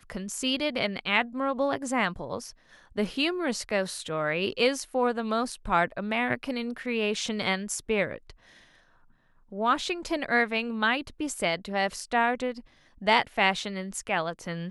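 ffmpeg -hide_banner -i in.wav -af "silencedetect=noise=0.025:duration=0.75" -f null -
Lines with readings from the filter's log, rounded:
silence_start: 8.30
silence_end: 9.54 | silence_duration: 1.24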